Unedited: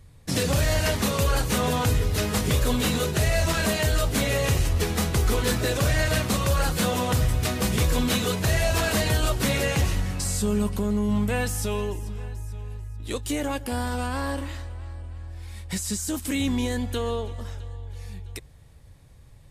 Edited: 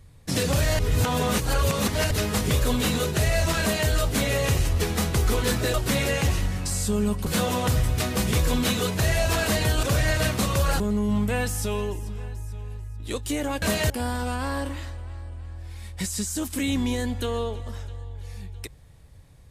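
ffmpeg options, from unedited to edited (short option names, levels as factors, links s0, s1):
-filter_complex "[0:a]asplit=9[s0][s1][s2][s3][s4][s5][s6][s7][s8];[s0]atrim=end=0.792[s9];[s1]atrim=start=0.788:end=2.112,asetpts=PTS-STARTPTS,areverse[s10];[s2]atrim=start=2.108:end=5.742[s11];[s3]atrim=start=9.278:end=10.802[s12];[s4]atrim=start=6.708:end=9.282[s13];[s5]atrim=start=5.738:end=6.712[s14];[s6]atrim=start=10.798:end=13.622[s15];[s7]atrim=start=3.608:end=3.892[s16];[s8]atrim=start=13.618[s17];[s9][s10]acrossfade=d=0.004:c1=hsin:c2=hsin[s18];[s18][s11]acrossfade=d=0.004:c1=hsin:c2=hsin[s19];[s19][s12]acrossfade=d=0.004:c1=hsin:c2=hsin[s20];[s20][s13]acrossfade=d=0.004:c1=hsin:c2=hsin[s21];[s21][s14]acrossfade=d=0.004:c1=hsin:c2=hsin[s22];[s22][s15]acrossfade=d=0.004:c1=hsin:c2=hsin[s23];[s23][s16]acrossfade=d=0.004:c1=hsin:c2=hsin[s24];[s24][s17]acrossfade=d=0.004:c1=hsin:c2=hsin"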